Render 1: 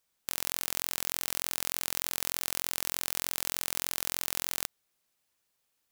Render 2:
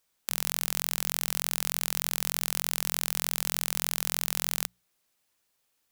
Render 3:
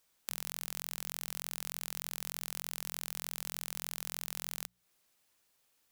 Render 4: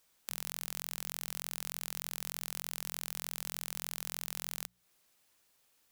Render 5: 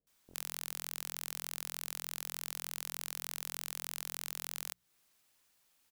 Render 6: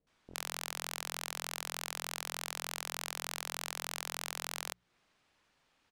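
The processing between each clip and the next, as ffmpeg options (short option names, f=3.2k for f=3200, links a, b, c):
-af "bandreject=f=60:t=h:w=6,bandreject=f=120:t=h:w=6,bandreject=f=180:t=h:w=6,volume=3dB"
-af "acompressor=threshold=-35dB:ratio=4,volume=1dB"
-af "asoftclip=type=tanh:threshold=-11.5dB,volume=2.5dB"
-filter_complex "[0:a]acrossover=split=500[a][b];[b]adelay=70[c];[a][c]amix=inputs=2:normalize=0,volume=-1dB"
-af "adynamicsmooth=sensitivity=4:basefreq=3.5k,volume=7.5dB"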